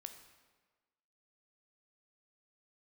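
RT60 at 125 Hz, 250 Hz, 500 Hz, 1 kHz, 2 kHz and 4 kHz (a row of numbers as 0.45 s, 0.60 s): 1.2 s, 1.4 s, 1.4 s, 1.4 s, 1.2 s, 1.1 s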